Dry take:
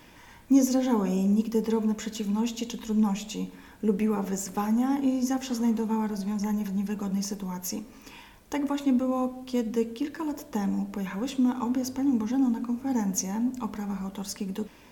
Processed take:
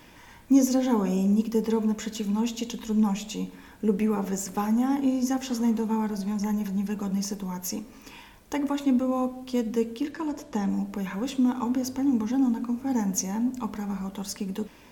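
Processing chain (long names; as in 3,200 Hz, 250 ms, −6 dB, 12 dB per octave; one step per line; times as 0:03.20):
0:10.11–0:10.69: low-pass filter 8,400 Hz 12 dB per octave
level +1 dB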